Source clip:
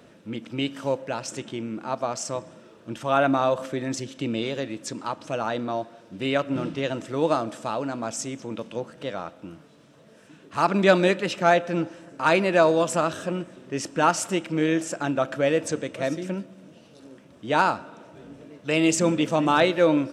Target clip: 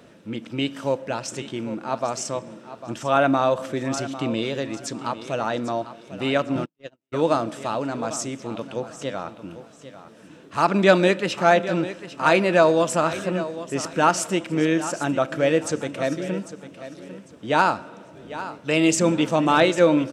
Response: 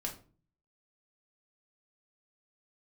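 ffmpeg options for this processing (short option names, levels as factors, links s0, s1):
-filter_complex "[0:a]aecho=1:1:799|1598|2397:0.211|0.055|0.0143,asplit=3[s0][s1][s2];[s0]afade=t=out:st=6.64:d=0.02[s3];[s1]agate=range=0.00178:threshold=0.0794:ratio=16:detection=peak,afade=t=in:st=6.64:d=0.02,afade=t=out:st=7.12:d=0.02[s4];[s2]afade=t=in:st=7.12:d=0.02[s5];[s3][s4][s5]amix=inputs=3:normalize=0,volume=1.26"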